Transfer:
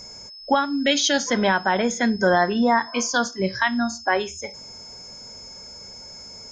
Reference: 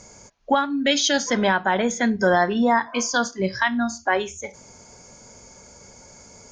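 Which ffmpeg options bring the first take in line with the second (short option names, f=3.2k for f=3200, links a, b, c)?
-af "bandreject=f=5.2k:w=30"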